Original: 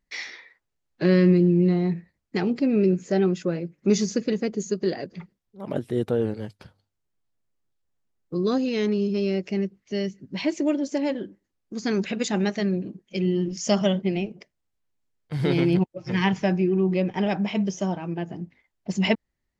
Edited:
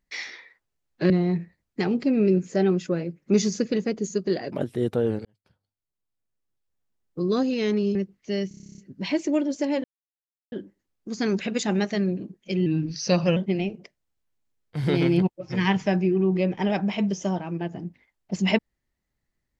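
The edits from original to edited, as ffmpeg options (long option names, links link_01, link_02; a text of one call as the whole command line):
ffmpeg -i in.wav -filter_complex "[0:a]asplit=18[link_01][link_02][link_03][link_04][link_05][link_06][link_07][link_08][link_09][link_10][link_11][link_12][link_13][link_14][link_15][link_16][link_17][link_18];[link_01]atrim=end=1.102[link_19];[link_02]atrim=start=1.658:end=5.082[link_20];[link_03]atrim=start=5.668:end=6.4,asetpts=PTS-STARTPTS,afade=type=out:start_time=0.728:duration=0.004:curve=hsin[link_21];[link_04]atrim=start=6.4:end=9.102,asetpts=PTS-STARTPTS,afade=type=in:duration=1.94[link_22];[link_05]atrim=start=9.578:end=10.142[link_23];[link_06]atrim=start=10.108:end=10.142[link_24];[link_07]atrim=start=10.108:end=10.142[link_25];[link_08]atrim=start=10.108:end=10.142[link_26];[link_09]atrim=start=10.108:end=10.142[link_27];[link_10]atrim=start=10.108:end=10.142[link_28];[link_11]atrim=start=10.108:end=10.142[link_29];[link_12]atrim=start=10.108:end=10.142[link_30];[link_13]atrim=start=10.108:end=10.142[link_31];[link_14]atrim=start=10.108:end=10.142[link_32];[link_15]atrim=start=10.108:end=11.17,asetpts=PTS-STARTPTS,afade=type=out:start_time=1.058:duration=0.004:curve=hsin,apad=pad_dur=0.68[link_33];[link_16]atrim=start=11.17:end=13.314,asetpts=PTS-STARTPTS,afade=type=in:duration=0.004:curve=hsin[link_34];[link_17]atrim=start=13.31:end=13.93,asetpts=PTS-STARTPTS,asetrate=38808,aresample=44100,atrim=end_sample=31070,asetpts=PTS-STARTPTS[link_35];[link_18]atrim=start=13.926[link_36];[link_19][link_20]acrossfade=duration=0.004:curve1=hsin:curve2=hsin[link_37];[link_21][link_22]concat=n=2:v=0:a=1[link_38];[link_37][link_38]acrossfade=duration=0.004:curve1=hsin:curve2=hsin[link_39];[link_39][link_23]acrossfade=duration=0.004:curve1=hsin:curve2=hsin[link_40];[link_40][link_24]acrossfade=duration=0.004:curve1=hsin:curve2=hsin[link_41];[link_41][link_25]acrossfade=duration=0.004:curve1=hsin:curve2=hsin[link_42];[link_42][link_26]acrossfade=duration=0.004:curve1=hsin:curve2=hsin[link_43];[link_43][link_27]acrossfade=duration=0.004:curve1=hsin:curve2=hsin[link_44];[link_44][link_28]acrossfade=duration=0.004:curve1=hsin:curve2=hsin[link_45];[link_45][link_29]acrossfade=duration=0.004:curve1=hsin:curve2=hsin[link_46];[link_46][link_30]acrossfade=duration=0.004:curve1=hsin:curve2=hsin[link_47];[link_47][link_31]acrossfade=duration=0.004:curve1=hsin:curve2=hsin[link_48];[link_48][link_32]acrossfade=duration=0.004:curve1=hsin:curve2=hsin[link_49];[link_33][link_34]concat=n=2:v=0:a=1[link_50];[link_49][link_50]acrossfade=duration=0.004:curve1=hsin:curve2=hsin[link_51];[link_51][link_35]acrossfade=duration=0.004:curve1=hsin:curve2=hsin[link_52];[link_52][link_36]acrossfade=duration=0.004:curve1=hsin:curve2=hsin" out.wav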